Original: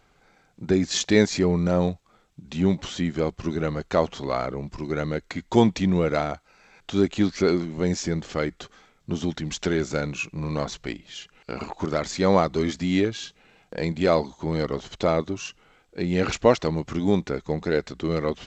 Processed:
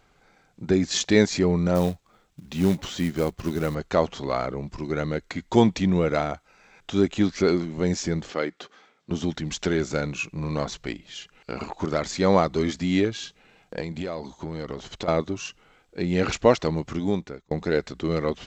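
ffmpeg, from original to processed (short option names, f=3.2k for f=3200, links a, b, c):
-filter_complex "[0:a]asettb=1/sr,asplit=3[a][b][c];[a]atrim=end=1.754[d];[b]atrim=start=1.75:end=3.75,asetpts=PTS-STARTPTS,afade=t=in:d=0.004:c=qsin,afade=t=out:st=1.996:d=0.004:c=qsin,acrusher=bits=5:mode=log:mix=0:aa=0.000001[e];[c]atrim=start=3.746[f];[d][e]acrossfade=d=0.004:c1=hsin:c2=qsin[g];[g][f]acrossfade=d=0.004:c1=qsin:c2=hsin,asettb=1/sr,asplit=3[h][i][j];[h]atrim=end=5.904[k];[i]atrim=start=5.9:end=7.37,asetpts=PTS-STARTPTS,afade=t=in:d=0.004:c=qsin,afade=t=out:st=1.466:d=0.004:c=qsin,bandreject=f=4.4k:w=12[l];[j]atrim=start=7.366[m];[k][l]acrossfade=d=0.004:c1=hsin:c2=qsin[n];[n][m]acrossfade=d=0.004:c1=qsin:c2=hsin,asettb=1/sr,asplit=3[o][p][q];[o]atrim=end=8.304[r];[p]atrim=start=8.3:end=9.11,asetpts=PTS-STARTPTS,afade=t=in:d=0.004:c=qsin,afade=t=out:st=0.806:d=0.004:c=qsin,highpass=260,lowpass=5.6k[s];[q]atrim=start=9.106[t];[r][s]acrossfade=d=0.004:c1=hsin:c2=qsin[u];[u][t]acrossfade=d=0.004:c1=qsin:c2=hsin,asettb=1/sr,asplit=3[v][w][x];[v]atrim=end=13.804[y];[w]atrim=start=13.8:end=15.08,asetpts=PTS-STARTPTS,afade=t=in:d=0.004:c=qsin,afade=t=out:st=1.276:d=0.004:c=qsin,acompressor=threshold=-27dB:ratio=6:attack=3.2:release=140:knee=1:detection=peak[z];[x]atrim=start=15.076[aa];[y][z]acrossfade=d=0.004:c1=hsin:c2=qsin[ab];[ab][aa]acrossfade=d=0.004:c1=qsin:c2=hsin,asplit=2[ac][ad];[ac]atrim=end=17.51,asetpts=PTS-STARTPTS,afade=t=out:st=16.65:d=0.86:c=qsin[ae];[ad]atrim=start=17.51,asetpts=PTS-STARTPTS,afade=t=in:d=0.004:c=hsin[af];[ae][af]concat=n=2:v=0:a=1"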